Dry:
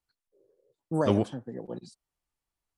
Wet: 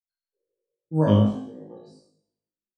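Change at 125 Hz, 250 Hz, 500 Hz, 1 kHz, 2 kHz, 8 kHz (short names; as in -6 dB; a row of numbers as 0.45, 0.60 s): +10.5 dB, +7.0 dB, +2.5 dB, +2.5 dB, 0.0 dB, n/a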